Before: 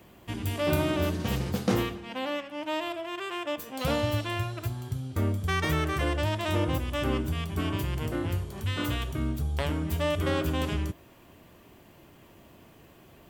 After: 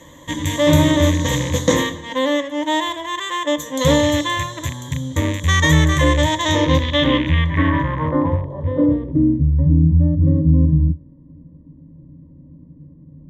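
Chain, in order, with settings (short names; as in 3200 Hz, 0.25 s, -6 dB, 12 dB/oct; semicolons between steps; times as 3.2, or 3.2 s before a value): rattling part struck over -30 dBFS, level -26 dBFS; low-pass sweep 8100 Hz -> 200 Hz, 6.29–9.65; ripple EQ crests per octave 1.1, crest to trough 18 dB; gain +7.5 dB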